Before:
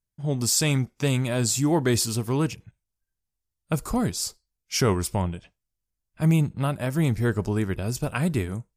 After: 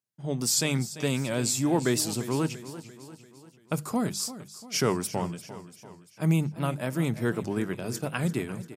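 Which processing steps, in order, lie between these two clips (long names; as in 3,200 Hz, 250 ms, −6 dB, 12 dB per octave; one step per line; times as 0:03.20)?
high-pass filter 130 Hz 24 dB per octave
mains-hum notches 50/100/150/200 Hz
on a send: repeating echo 343 ms, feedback 52%, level −14.5 dB
on the sum: wow of a warped record 78 rpm, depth 100 cents
level −2.5 dB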